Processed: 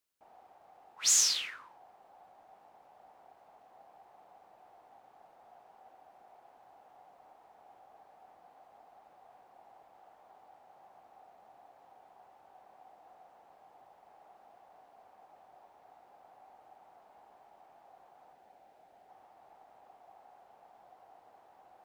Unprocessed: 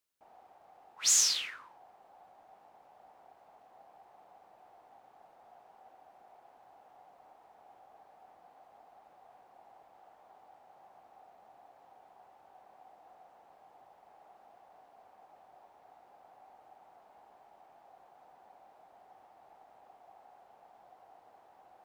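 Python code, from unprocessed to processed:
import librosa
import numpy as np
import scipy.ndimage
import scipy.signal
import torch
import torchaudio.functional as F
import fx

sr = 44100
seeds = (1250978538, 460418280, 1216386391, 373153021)

y = fx.peak_eq(x, sr, hz=1100.0, db=-8.5, octaves=0.57, at=(18.33, 19.09))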